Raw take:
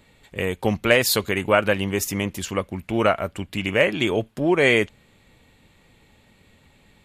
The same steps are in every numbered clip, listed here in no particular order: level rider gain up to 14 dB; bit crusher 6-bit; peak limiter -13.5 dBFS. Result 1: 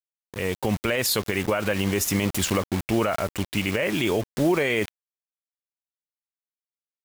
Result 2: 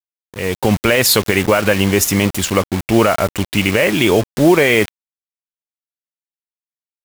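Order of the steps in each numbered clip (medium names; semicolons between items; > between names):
bit crusher > level rider > peak limiter; peak limiter > bit crusher > level rider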